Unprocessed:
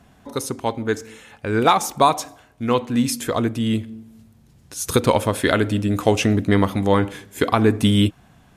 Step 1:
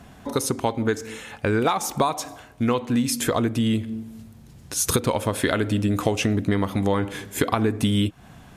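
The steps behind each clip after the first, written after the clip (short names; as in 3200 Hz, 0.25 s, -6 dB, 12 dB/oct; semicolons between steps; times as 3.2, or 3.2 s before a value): compressor 6:1, threshold -25 dBFS, peak gain reduction 14.5 dB; gain +6 dB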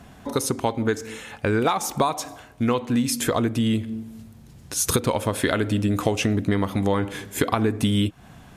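nothing audible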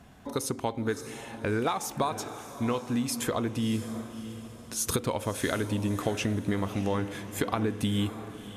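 diffused feedback echo 0.625 s, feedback 42%, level -12 dB; gain -7 dB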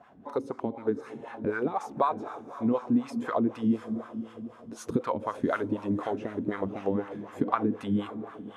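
wah 4 Hz 210–1300 Hz, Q 2.1; gain +7 dB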